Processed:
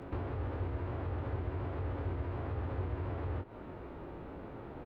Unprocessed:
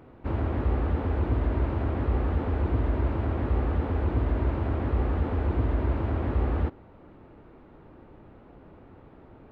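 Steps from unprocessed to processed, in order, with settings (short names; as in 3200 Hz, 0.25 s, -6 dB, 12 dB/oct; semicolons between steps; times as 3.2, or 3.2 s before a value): compressor 12:1, threshold -37 dBFS, peak gain reduction 17 dB; doubler 44 ms -4 dB; frequency shift +23 Hz; time stretch by phase-locked vocoder 0.51×; dynamic EQ 160 Hz, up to -6 dB, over -54 dBFS, Q 0.95; gain +6 dB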